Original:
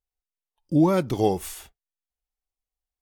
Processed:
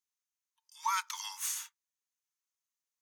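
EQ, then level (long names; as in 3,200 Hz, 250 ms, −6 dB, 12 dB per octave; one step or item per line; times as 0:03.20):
Chebyshev high-pass filter 900 Hz, order 10
parametric band 6,400 Hz +10.5 dB 0.28 octaves
0.0 dB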